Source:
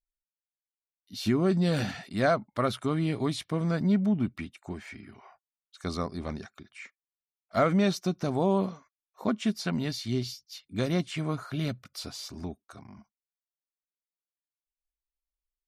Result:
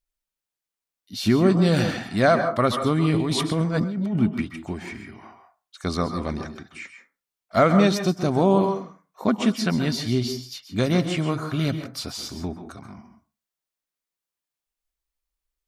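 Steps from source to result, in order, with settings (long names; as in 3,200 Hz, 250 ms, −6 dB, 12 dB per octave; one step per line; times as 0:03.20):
on a send at −7 dB: convolution reverb RT60 0.35 s, pre-delay 122 ms
0:03.14–0:04.20: on the sum: compressor whose output falls as the input rises −30 dBFS, ratio −1
level +6.5 dB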